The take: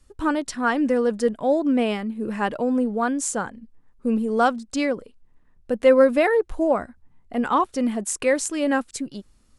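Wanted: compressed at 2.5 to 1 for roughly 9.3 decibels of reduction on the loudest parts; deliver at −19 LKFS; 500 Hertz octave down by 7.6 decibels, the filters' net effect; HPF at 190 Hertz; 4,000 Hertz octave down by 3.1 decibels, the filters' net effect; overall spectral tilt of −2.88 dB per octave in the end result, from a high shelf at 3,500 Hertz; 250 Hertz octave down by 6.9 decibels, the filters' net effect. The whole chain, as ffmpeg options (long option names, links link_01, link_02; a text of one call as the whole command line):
ffmpeg -i in.wav -af "highpass=190,equalizer=frequency=250:width_type=o:gain=-4.5,equalizer=frequency=500:width_type=o:gain=-7.5,highshelf=frequency=3500:gain=4.5,equalizer=frequency=4000:width_type=o:gain=-8,acompressor=threshold=-32dB:ratio=2.5,volume=15dB" out.wav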